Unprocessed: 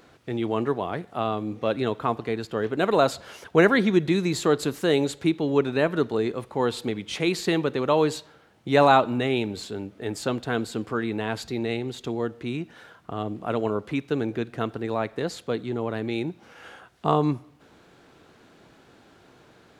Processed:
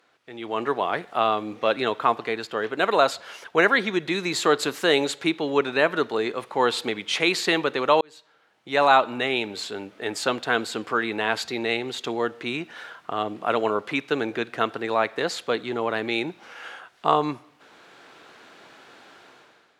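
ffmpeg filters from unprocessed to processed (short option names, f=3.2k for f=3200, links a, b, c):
-filter_complex "[0:a]asplit=2[a][b];[a]atrim=end=8.01,asetpts=PTS-STARTPTS,afade=t=out:st=8.006:d=0.004:c=hsin[c];[b]atrim=start=8.01,asetpts=PTS-STARTPTS,afade=t=in:d=1.19[d];[c][d]concat=n=2:v=0:a=1,highpass=f=1.3k:p=1,aemphasis=mode=reproduction:type=cd,dynaudnorm=f=160:g=7:m=15dB,volume=-3dB"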